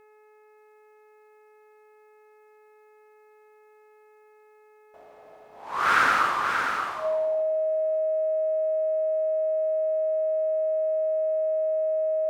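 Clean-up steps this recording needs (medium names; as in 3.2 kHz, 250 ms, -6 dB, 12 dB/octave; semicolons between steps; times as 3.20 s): de-hum 426.3 Hz, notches 6; band-stop 630 Hz, Q 30; inverse comb 583 ms -6 dB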